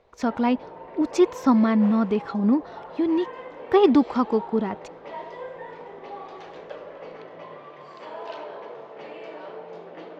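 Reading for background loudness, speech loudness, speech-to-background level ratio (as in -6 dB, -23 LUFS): -39.5 LUFS, -22.5 LUFS, 17.0 dB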